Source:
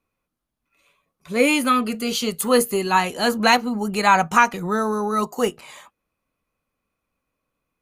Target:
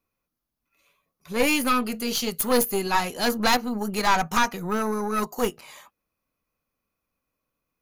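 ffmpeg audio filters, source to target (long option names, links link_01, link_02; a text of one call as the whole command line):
ffmpeg -i in.wav -af "aeval=exprs='(tanh(5.01*val(0)+0.7)-tanh(0.7))/5.01':channel_layout=same,aexciter=amount=1.6:drive=3.3:freq=4700" out.wav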